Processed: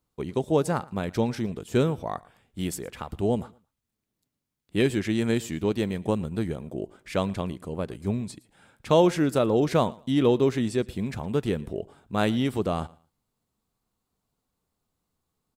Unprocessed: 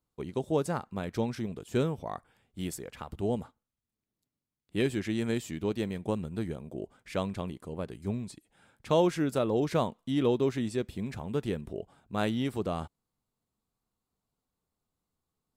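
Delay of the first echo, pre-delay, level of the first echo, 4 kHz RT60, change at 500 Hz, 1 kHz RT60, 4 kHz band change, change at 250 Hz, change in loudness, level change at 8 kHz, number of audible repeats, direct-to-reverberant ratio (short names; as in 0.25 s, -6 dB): 0.113 s, none, -23.0 dB, none, +5.5 dB, none, +5.5 dB, +5.5 dB, +5.5 dB, +5.5 dB, 1, none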